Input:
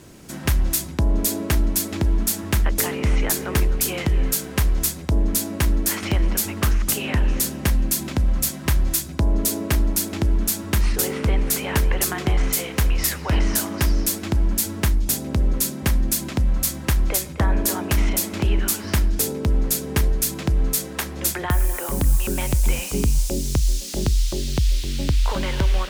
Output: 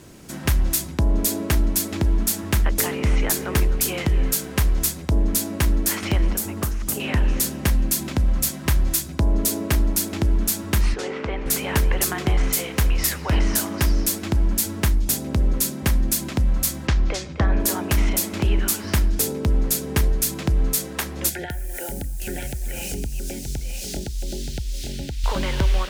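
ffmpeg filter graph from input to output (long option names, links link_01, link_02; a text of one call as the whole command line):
ffmpeg -i in.wav -filter_complex "[0:a]asettb=1/sr,asplit=3[link_01][link_02][link_03];[link_01]atrim=end=6.324[link_04];[link_02]atrim=start=6.32:end=7,asetpts=PTS-STARTPTS,afade=type=in:duration=0.004:curve=qsin,afade=type=out:start_time=0.676:duration=0.004:curve=qsin,highpass=40,acrossover=split=1300|3000|6300[link_05][link_06][link_07][link_08];[link_05]acompressor=threshold=-23dB:ratio=3[link_09];[link_06]acompressor=threshold=-49dB:ratio=3[link_10];[link_07]acompressor=threshold=-45dB:ratio=3[link_11];[link_08]acompressor=threshold=-23dB:ratio=3[link_12];[link_09][link_10][link_11][link_12]amix=inputs=4:normalize=0[link_13];[link_03]atrim=start=6.996[link_14];[link_04][link_13]acrossfade=duration=0.004:curve1=hsin:curve2=qsin[link_15];[link_15][link_14]acrossfade=duration=0.004:curve1=qsin:curve2=hsin,asettb=1/sr,asplit=3[link_16][link_17][link_18];[link_16]atrim=end=10.944[link_19];[link_17]atrim=start=10.94:end=11.46,asetpts=PTS-STARTPTS,afade=type=in:duration=0.004:curve=qsin,afade=type=out:start_time=0.516:duration=0.004:curve=qsin,lowpass=frequency=7000:width=0.5412,lowpass=frequency=7000:width=1.3066,bass=frequency=250:gain=-11,treble=frequency=4000:gain=-11[link_20];[link_18]atrim=start=11.456[link_21];[link_19][link_20]acrossfade=duration=0.004:curve1=hsin:curve2=qsin[link_22];[link_22][link_21]acrossfade=duration=0.004:curve1=qsin:curve2=hsin,asettb=1/sr,asplit=3[link_23][link_24][link_25];[link_23]atrim=end=16.874[link_26];[link_24]atrim=start=16.87:end=17.6,asetpts=PTS-STARTPTS,afade=type=in:duration=0.004:curve=qsin,afade=type=out:start_time=0.726:duration=0.004:curve=qsin,lowpass=frequency=5900:width=0.5412,lowpass=frequency=5900:width=1.3066,bandreject=frequency=950:width=24[link_27];[link_25]atrim=start=17.596[link_28];[link_26][link_27]acrossfade=duration=0.004:curve1=hsin:curve2=qsin[link_29];[link_29][link_28]acrossfade=duration=0.004:curve1=qsin:curve2=hsin,asettb=1/sr,asplit=3[link_30][link_31][link_32];[link_30]atrim=end=21.294[link_33];[link_31]atrim=start=21.29:end=25.24,asetpts=PTS-STARTPTS,afade=type=in:duration=0.004:curve=qsin,afade=type=out:start_time=3.946:duration=0.004:curve=qsin,acompressor=threshold=-25dB:ratio=12:attack=3.2:release=140:knee=1:detection=peak,asuperstop=centerf=1100:order=20:qfactor=2.2,aecho=1:1:925:0.501,atrim=end_sample=174195[link_34];[link_32]atrim=start=25.236[link_35];[link_33][link_34]acrossfade=duration=0.004:curve1=hsin:curve2=qsin[link_36];[link_36][link_35]acrossfade=duration=0.004:curve1=qsin:curve2=hsin" out.wav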